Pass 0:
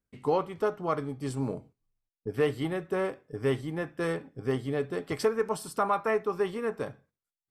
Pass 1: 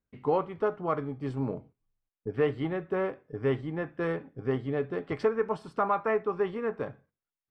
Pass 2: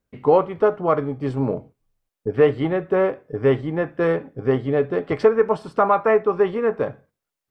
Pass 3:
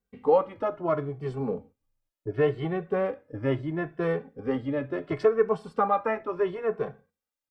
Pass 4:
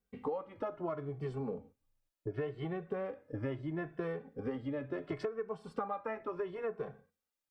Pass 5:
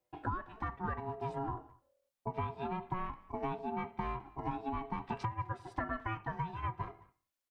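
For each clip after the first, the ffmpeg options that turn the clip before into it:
-af "lowpass=2.5k"
-af "equalizer=f=550:t=o:w=0.89:g=4.5,volume=8dB"
-filter_complex "[0:a]asplit=2[a][b];[b]adelay=2.2,afreqshift=0.72[c];[a][c]amix=inputs=2:normalize=1,volume=-4dB"
-af "acompressor=threshold=-33dB:ratio=12,volume=-1dB"
-filter_complex "[0:a]asplit=2[a][b];[b]adelay=210,highpass=300,lowpass=3.4k,asoftclip=type=hard:threshold=-33.5dB,volume=-21dB[c];[a][c]amix=inputs=2:normalize=0,aeval=exprs='val(0)*sin(2*PI*550*n/s)':c=same,volume=3dB"

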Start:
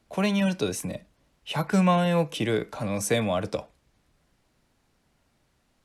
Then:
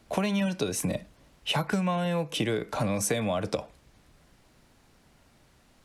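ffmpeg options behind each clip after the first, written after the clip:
-af "acompressor=threshold=-32dB:ratio=16,volume=8dB"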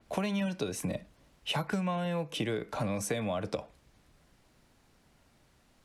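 -af "adynamicequalizer=threshold=0.00398:dfrequency=4200:dqfactor=0.7:tfrequency=4200:tqfactor=0.7:attack=5:release=100:ratio=0.375:range=2.5:mode=cutabove:tftype=highshelf,volume=-4.5dB"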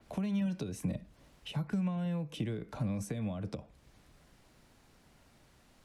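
-filter_complex "[0:a]acrossover=split=260[a][b];[b]acompressor=threshold=-47dB:ratio=6[c];[a][c]amix=inputs=2:normalize=0,volume=2dB"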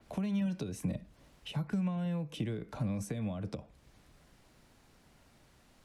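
-af anull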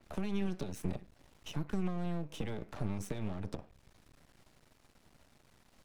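-af "aeval=exprs='max(val(0),0)':c=same,volume=2dB"

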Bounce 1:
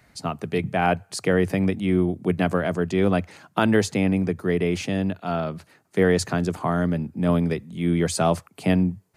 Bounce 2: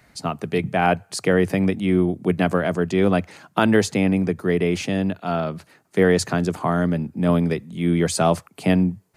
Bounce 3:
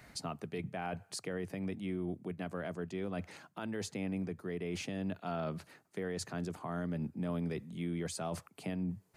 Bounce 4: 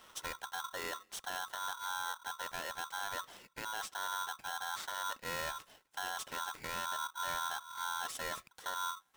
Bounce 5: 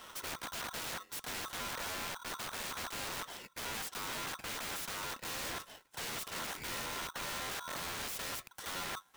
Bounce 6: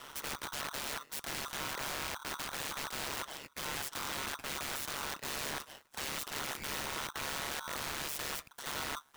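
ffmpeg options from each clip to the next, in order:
-af "equalizer=f=87:w=1.7:g=-3.5,volume=2.5dB"
-af "areverse,acompressor=threshold=-26dB:ratio=6,areverse,alimiter=level_in=3dB:limit=-24dB:level=0:latency=1:release=474,volume=-3dB,volume=-1.5dB"
-af "aeval=exprs='val(0)*sgn(sin(2*PI*1200*n/s))':c=same,volume=-2dB"
-af "acrusher=bits=4:mode=log:mix=0:aa=0.000001,aeval=exprs='(mod(141*val(0)+1,2)-1)/141':c=same,volume=7dB"
-af "aeval=exprs='val(0)*sin(2*PI*71*n/s)':c=same,volume=4.5dB"

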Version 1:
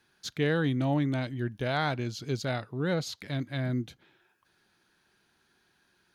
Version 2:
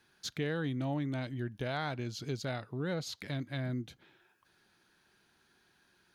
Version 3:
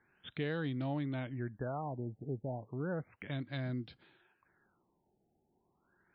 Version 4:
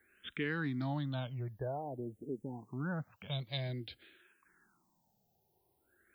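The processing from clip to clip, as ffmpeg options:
-af "acompressor=threshold=-37dB:ratio=2"
-af "afftfilt=real='re*lt(b*sr/1024,850*pow(5600/850,0.5+0.5*sin(2*PI*0.33*pts/sr)))':imag='im*lt(b*sr/1024,850*pow(5600/850,0.5+0.5*sin(2*PI*0.33*pts/sr)))':win_size=1024:overlap=0.75,volume=-2dB"
-filter_complex "[0:a]acrossover=split=690[a][b];[b]crystalizer=i=4:c=0[c];[a][c]amix=inputs=2:normalize=0,asplit=2[d][e];[e]afreqshift=-0.5[f];[d][f]amix=inputs=2:normalize=1,volume=2dB"

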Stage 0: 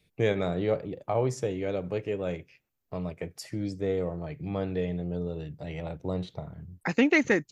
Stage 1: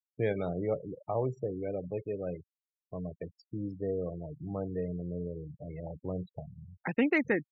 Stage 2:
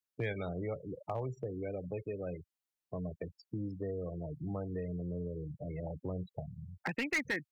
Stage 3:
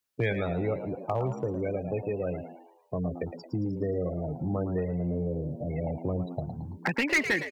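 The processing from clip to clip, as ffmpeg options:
-af "afftfilt=real='re*gte(hypot(re,im),0.0282)':imag='im*gte(hypot(re,im),0.0282)':win_size=1024:overlap=0.75,lowpass=2.7k,volume=-4.5dB"
-filter_complex "[0:a]acrossover=split=100|1300[a][b][c];[b]acompressor=threshold=-39dB:ratio=5[d];[a][d][c]amix=inputs=3:normalize=0,asoftclip=type=hard:threshold=-29.5dB,volume=2dB"
-filter_complex "[0:a]asplit=6[a][b][c][d][e][f];[b]adelay=111,afreqshift=83,volume=-10.5dB[g];[c]adelay=222,afreqshift=166,volume=-17.4dB[h];[d]adelay=333,afreqshift=249,volume=-24.4dB[i];[e]adelay=444,afreqshift=332,volume=-31.3dB[j];[f]adelay=555,afreqshift=415,volume=-38.2dB[k];[a][g][h][i][j][k]amix=inputs=6:normalize=0,volume=8dB"

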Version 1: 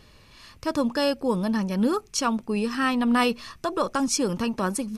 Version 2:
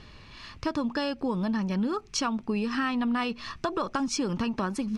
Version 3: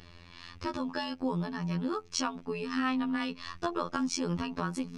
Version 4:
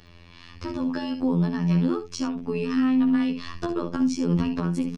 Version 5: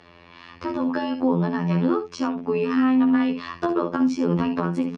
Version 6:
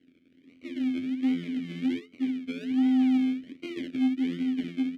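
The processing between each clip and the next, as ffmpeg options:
-af "lowpass=4.7k,equalizer=f=520:t=o:w=0.54:g=-5.5,acompressor=threshold=-30dB:ratio=6,volume=4.5dB"
-af "afftfilt=real='hypot(re,im)*cos(PI*b)':imag='0':win_size=2048:overlap=0.75"
-filter_complex "[0:a]acrossover=split=400[a][b];[b]acompressor=threshold=-44dB:ratio=4[c];[a][c]amix=inputs=2:normalize=0,aecho=1:1:58|70:0.251|0.282,dynaudnorm=f=450:g=3:m=8.5dB"
-af "bandpass=f=830:t=q:w=0.58:csg=0,volume=8dB"
-filter_complex "[0:a]acrusher=samples=36:mix=1:aa=0.000001:lfo=1:lforange=21.6:lforate=1.3,asplit=3[a][b][c];[a]bandpass=f=270:t=q:w=8,volume=0dB[d];[b]bandpass=f=2.29k:t=q:w=8,volume=-6dB[e];[c]bandpass=f=3.01k:t=q:w=8,volume=-9dB[f];[d][e][f]amix=inputs=3:normalize=0,asoftclip=type=tanh:threshold=-17dB"

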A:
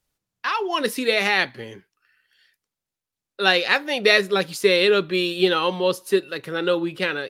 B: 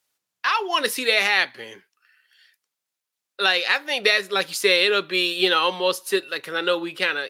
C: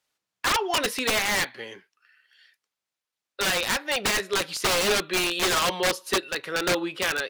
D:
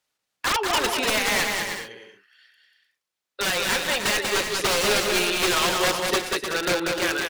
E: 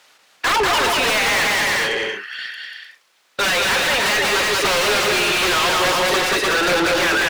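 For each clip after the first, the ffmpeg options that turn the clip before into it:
-af "highpass=f=910:p=1,alimiter=limit=-10dB:level=0:latency=1:release=344,volume=4.5dB"
-af "aeval=exprs='(mod(5.62*val(0)+1,2)-1)/5.62':c=same,highshelf=f=8.8k:g=-12"
-af "aecho=1:1:190|304|372.4|413.4|438.1:0.631|0.398|0.251|0.158|0.1"
-filter_complex "[0:a]asplit=2[a][b];[b]highpass=f=720:p=1,volume=36dB,asoftclip=type=tanh:threshold=-10.5dB[c];[a][c]amix=inputs=2:normalize=0,lowpass=f=3.2k:p=1,volume=-6dB"

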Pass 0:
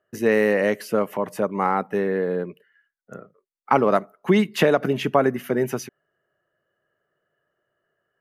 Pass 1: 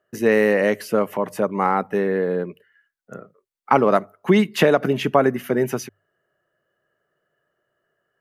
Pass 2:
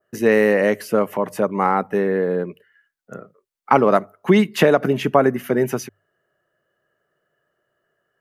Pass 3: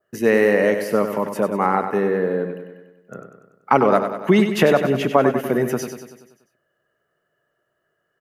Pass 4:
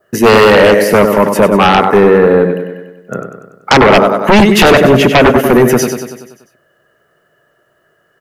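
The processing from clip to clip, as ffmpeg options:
-af "bandreject=f=50:t=h:w=6,bandreject=f=100:t=h:w=6,volume=2dB"
-af "adynamicequalizer=threshold=0.0112:dfrequency=3600:dqfactor=1:tfrequency=3600:tqfactor=1:attack=5:release=100:ratio=0.375:range=2:mode=cutabove:tftype=bell,volume=1.5dB"
-af "aecho=1:1:96|192|288|384|480|576|672:0.376|0.214|0.122|0.0696|0.0397|0.0226|0.0129,volume=-1dB"
-af "aeval=exprs='0.841*sin(PI/2*3.98*val(0)/0.841)':c=same"

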